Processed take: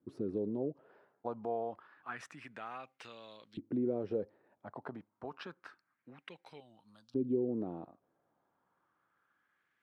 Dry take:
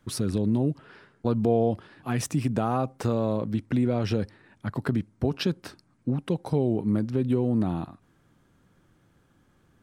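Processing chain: LFO band-pass saw up 0.28 Hz 310–4000 Hz; 6.6–7.49 envelope phaser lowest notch 300 Hz, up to 1400 Hz, full sweep at -33.5 dBFS; gain -3 dB

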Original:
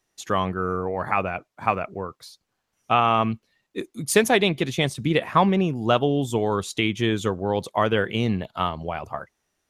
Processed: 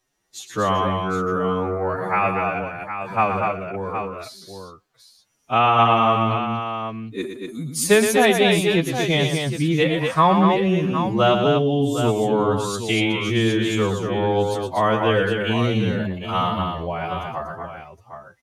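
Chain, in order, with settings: tapped delay 61/127/402 ms -7.5/-5/-9 dB; time stretch by phase-locked vocoder 1.9×; gain +1.5 dB

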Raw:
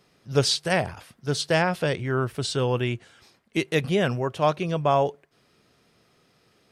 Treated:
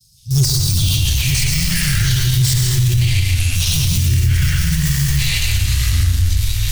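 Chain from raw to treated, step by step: de-esser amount 65%; in parallel at -6.5 dB: Schmitt trigger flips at -30 dBFS; on the sum: expander -59 dBFS; inverse Chebyshev band-stop 330–1800 Hz, stop band 60 dB; high shelf 10000 Hz +6.5 dB; soft clip -26.5 dBFS, distortion -19 dB; echoes that change speed 0.16 s, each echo -6 st, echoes 3; echo with dull and thin repeats by turns 0.116 s, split 1200 Hz, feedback 52%, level -6.5 dB; on a send at -1.5 dB: reverb RT60 0.60 s, pre-delay 0.105 s; on the sum: maximiser +26 dB; gain -6 dB

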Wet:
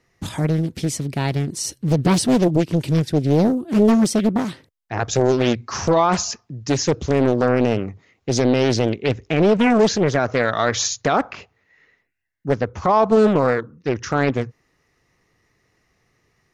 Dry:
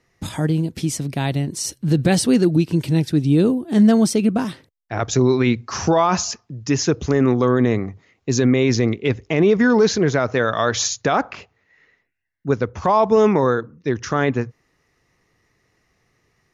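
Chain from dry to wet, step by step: Doppler distortion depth 0.9 ms

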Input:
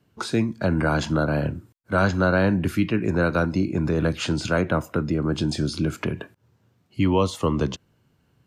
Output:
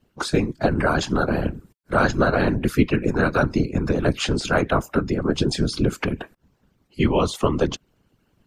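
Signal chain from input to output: whisperiser; harmonic-percussive split harmonic -13 dB; gain +4.5 dB

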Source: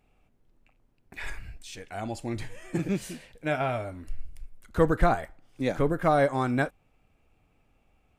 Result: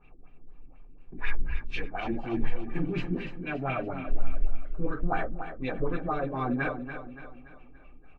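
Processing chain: dynamic EQ 3500 Hz, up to +4 dB, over -46 dBFS, Q 0.84; reverse; compressor 10:1, threshold -36 dBFS, peak gain reduction 21 dB; reverse; reverb RT60 0.25 s, pre-delay 3 ms, DRR -2 dB; LFO low-pass sine 4.1 Hz 250–2800 Hz; LPF 7800 Hz; bell 88 Hz -8.5 dB 1.4 oct; notch 380 Hz, Q 12; feedback echo 0.286 s, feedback 45%, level -9.5 dB

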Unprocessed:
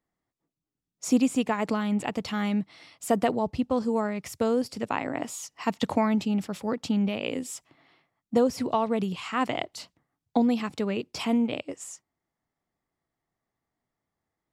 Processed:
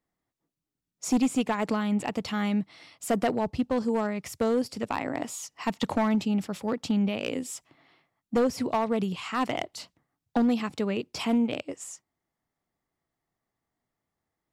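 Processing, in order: overloaded stage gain 18.5 dB

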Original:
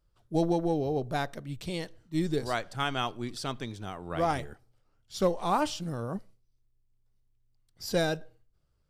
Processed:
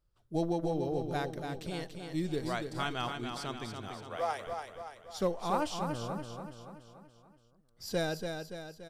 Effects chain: 3.88–4.47 steep high-pass 420 Hz 48 dB/oct; on a send: feedback echo 0.286 s, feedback 52%, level -6 dB; on the sum: gain -5 dB

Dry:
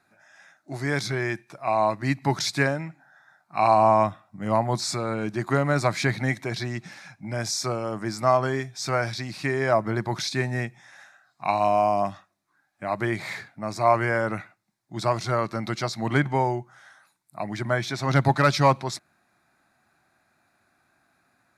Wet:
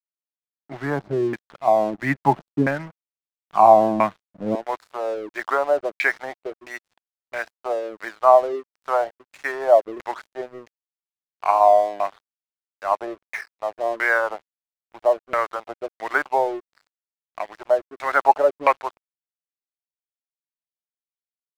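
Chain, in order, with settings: HPF 140 Hz 24 dB/oct, from 4.55 s 440 Hz; LFO low-pass saw down 1.5 Hz 270–2400 Hz; crossover distortion -41 dBFS; gain +2.5 dB

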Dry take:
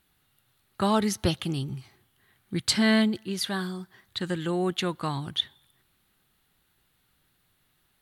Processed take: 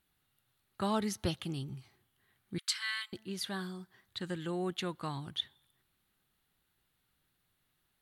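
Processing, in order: 2.58–3.13 steep high-pass 1100 Hz 48 dB/oct; gain -8.5 dB

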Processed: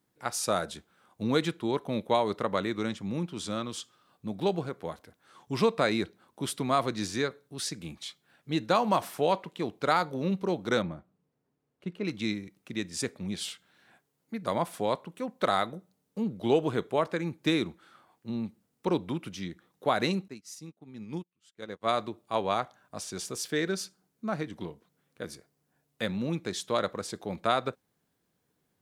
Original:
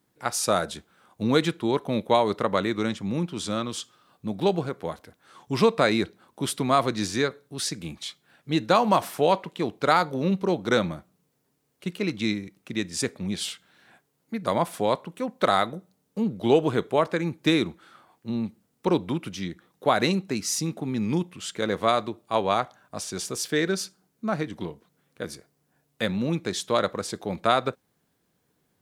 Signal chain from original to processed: 10.82–12.05 LPF 1300 Hz 6 dB/oct; 20.28–21.89 upward expander 2.5:1, over -43 dBFS; gain -5 dB

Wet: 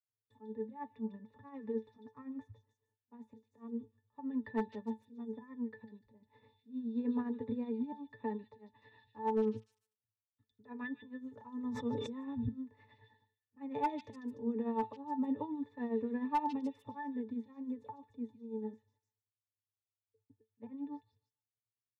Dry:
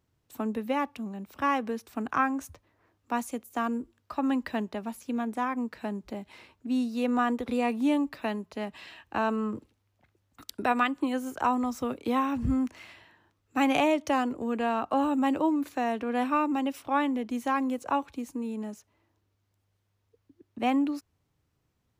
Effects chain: expander -58 dBFS; high shelf 4100 Hz -8.5 dB; comb 7 ms, depth 49%; 7.26–7.93 compressor 6:1, threshold -27 dBFS, peak gain reduction 8.5 dB; 9.57–10.63 passive tone stack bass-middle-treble 6-0-2; auto swell 0.317 s; tremolo 9.6 Hz, depth 65%; octave resonator A, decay 0.15 s; hard clip -31.5 dBFS, distortion -23 dB; delay with a stepping band-pass 0.148 s, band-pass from 4200 Hz, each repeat 0.7 oct, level 0 dB; 11.56–12.4 sustainer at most 38 dB/s; gain +6.5 dB

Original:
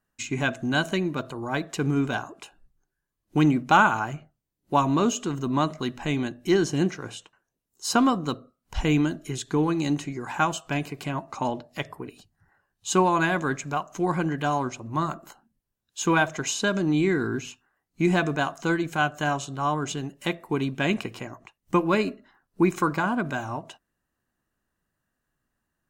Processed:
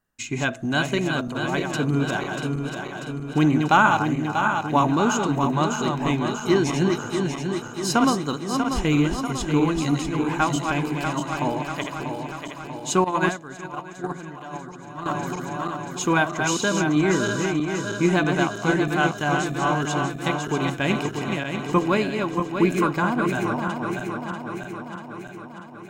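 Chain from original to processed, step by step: regenerating reverse delay 0.32 s, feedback 77%, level -5 dB; 13.04–15.06 gate -20 dBFS, range -14 dB; gain +1 dB

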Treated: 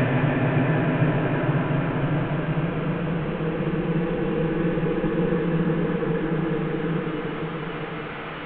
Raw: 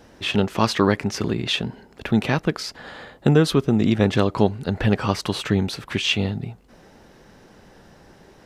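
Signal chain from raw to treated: delta modulation 16 kbps, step -31 dBFS; in parallel at -1 dB: limiter -15.5 dBFS, peak gain reduction 8 dB; on the sum: added harmonics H 3 -33 dB, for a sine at -5.5 dBFS; Paulstretch 31×, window 0.25 s, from 2.32; gain -3.5 dB

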